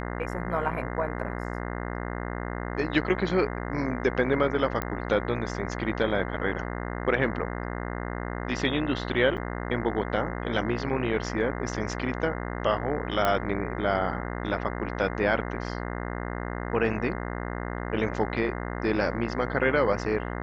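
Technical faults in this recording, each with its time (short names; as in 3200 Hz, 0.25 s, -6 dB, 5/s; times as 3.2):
buzz 60 Hz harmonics 35 -33 dBFS
4.82 pop -14 dBFS
9.37–9.38 gap 7.5 ms
13.25 pop -11 dBFS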